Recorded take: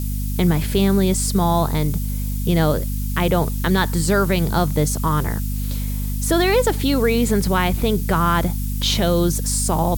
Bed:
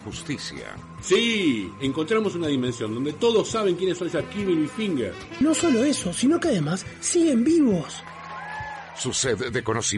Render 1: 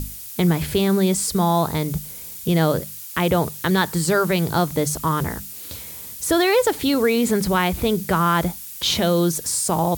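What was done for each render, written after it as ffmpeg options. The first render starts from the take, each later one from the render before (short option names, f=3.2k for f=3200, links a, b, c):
-af "bandreject=f=50:t=h:w=6,bandreject=f=100:t=h:w=6,bandreject=f=150:t=h:w=6,bandreject=f=200:t=h:w=6,bandreject=f=250:t=h:w=6"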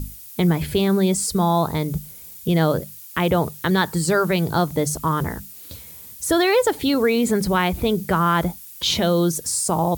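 -af "afftdn=nr=7:nf=-36"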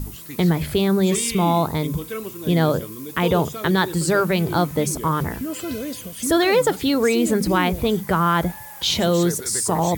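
-filter_complex "[1:a]volume=-8.5dB[a];[0:a][a]amix=inputs=2:normalize=0"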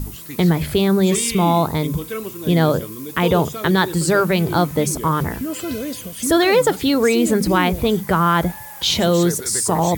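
-af "volume=2.5dB"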